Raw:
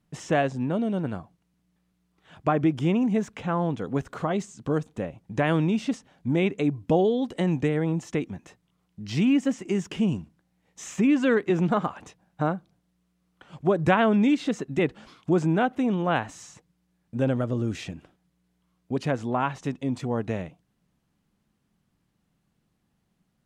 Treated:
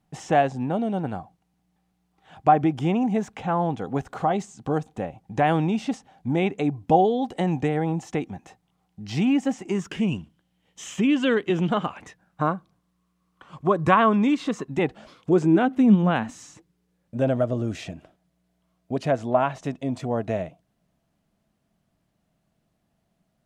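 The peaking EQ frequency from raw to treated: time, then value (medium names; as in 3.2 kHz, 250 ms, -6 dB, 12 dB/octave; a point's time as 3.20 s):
peaking EQ +13.5 dB 0.27 oct
9.66 s 780 Hz
10.18 s 3.1 kHz
11.80 s 3.1 kHz
12.41 s 1.1 kHz
14.60 s 1.1 kHz
16.03 s 180 Hz
17.24 s 650 Hz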